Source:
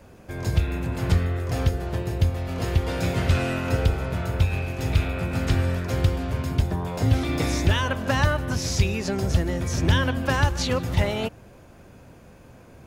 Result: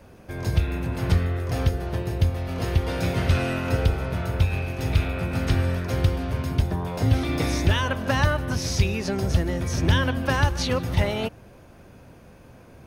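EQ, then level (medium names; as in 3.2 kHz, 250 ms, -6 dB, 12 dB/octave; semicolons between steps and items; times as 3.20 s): band-stop 7.3 kHz, Q 6.1; 0.0 dB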